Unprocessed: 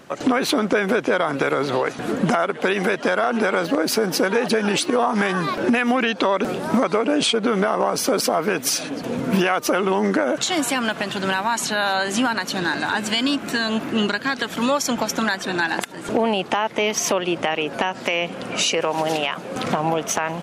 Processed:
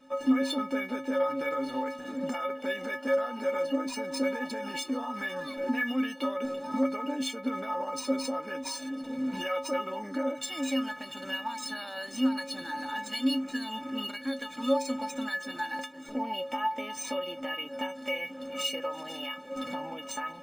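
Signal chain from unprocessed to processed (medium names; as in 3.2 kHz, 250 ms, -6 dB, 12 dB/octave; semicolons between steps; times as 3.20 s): inharmonic resonator 260 Hz, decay 0.4 s, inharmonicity 0.03; decimation joined by straight lines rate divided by 3×; trim +4 dB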